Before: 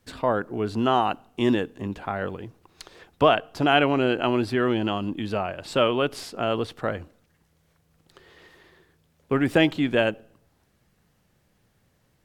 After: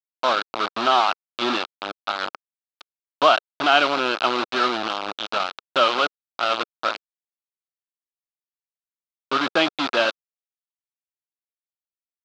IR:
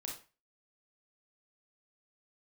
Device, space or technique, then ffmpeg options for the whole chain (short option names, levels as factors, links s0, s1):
hand-held game console: -af "acrusher=bits=3:mix=0:aa=0.000001,highpass=440,equalizer=f=450:t=q:w=4:g=-8,equalizer=f=1300:t=q:w=4:g=7,equalizer=f=1900:t=q:w=4:g=-8,equalizer=f=3800:t=q:w=4:g=5,lowpass=f=4500:w=0.5412,lowpass=f=4500:w=1.3066,volume=1.41"